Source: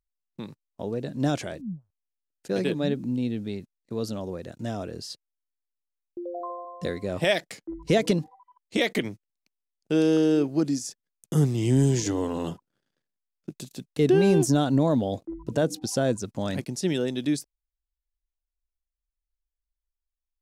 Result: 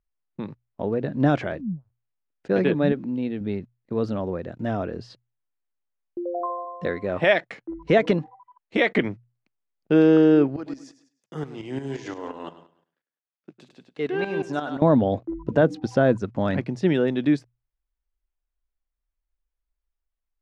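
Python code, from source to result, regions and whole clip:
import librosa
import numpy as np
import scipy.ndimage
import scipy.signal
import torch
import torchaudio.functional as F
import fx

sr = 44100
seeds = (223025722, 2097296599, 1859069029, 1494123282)

y = fx.chain(x, sr, fx.brickwall_lowpass(high_hz=10000.0),
    fx.low_shelf(hz=200.0, db=-11.5), at=(2.92, 3.41))
y = fx.chain(y, sr, fx.low_shelf(hz=290.0, db=-6.5),
    fx.notch(hz=4800.0, q=15.0), at=(6.46, 8.96))
y = fx.chain(y, sr, fx.highpass(hz=1000.0, slope=6),
    fx.echo_feedback(ms=102, feedback_pct=32, wet_db=-10.0),
    fx.tremolo_shape(shape='saw_up', hz=5.7, depth_pct=70), at=(10.56, 14.82))
y = fx.dynamic_eq(y, sr, hz=1600.0, q=0.77, threshold_db=-43.0, ratio=4.0, max_db=4)
y = scipy.signal.sosfilt(scipy.signal.butter(2, 2100.0, 'lowpass', fs=sr, output='sos'), y)
y = fx.hum_notches(y, sr, base_hz=60, count=2)
y = y * 10.0 ** (5.0 / 20.0)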